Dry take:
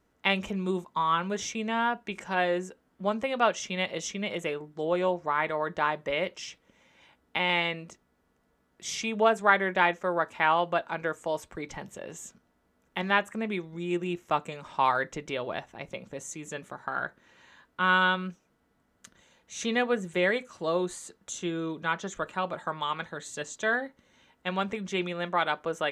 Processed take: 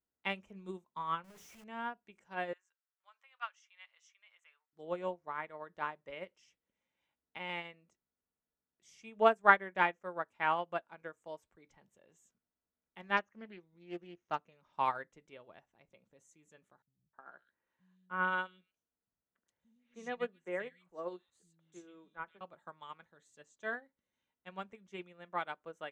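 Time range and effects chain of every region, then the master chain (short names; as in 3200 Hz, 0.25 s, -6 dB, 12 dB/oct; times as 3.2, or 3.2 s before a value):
1.24–1.64 infinite clipping + notches 60/120/180/240/300/360/420/480 Hz
2.53–4.73 HPF 1100 Hz 24 dB/oct + air absorption 57 m
13.17–14.73 hard clip -14 dBFS + brick-wall FIR low-pass 6800 Hz + Doppler distortion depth 0.22 ms
16.82–22.41 tone controls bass -2 dB, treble -6 dB + three bands offset in time lows, mids, highs 0.31/0.44 s, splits 170/2400 Hz
whole clip: dynamic EQ 3800 Hz, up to -7 dB, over -51 dBFS, Q 3.2; upward expander 2.5:1, over -35 dBFS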